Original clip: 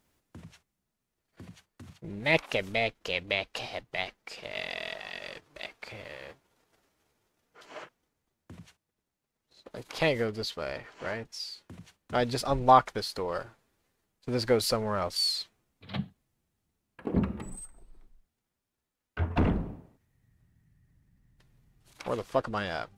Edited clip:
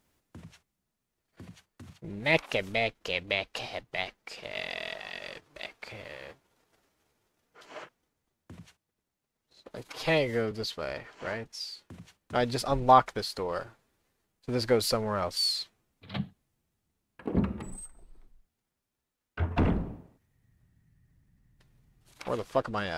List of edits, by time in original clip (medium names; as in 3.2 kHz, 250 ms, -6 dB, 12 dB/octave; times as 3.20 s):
9.90–10.31 s: stretch 1.5×